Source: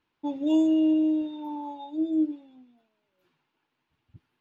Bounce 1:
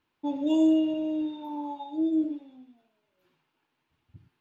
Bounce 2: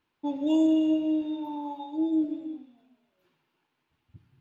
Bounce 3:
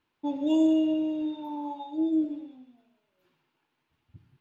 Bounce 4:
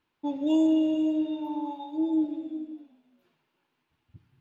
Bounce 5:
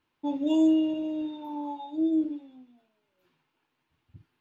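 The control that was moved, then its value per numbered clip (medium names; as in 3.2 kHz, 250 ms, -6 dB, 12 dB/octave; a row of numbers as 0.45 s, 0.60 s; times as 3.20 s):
gated-style reverb, gate: 140 ms, 350 ms, 220 ms, 540 ms, 80 ms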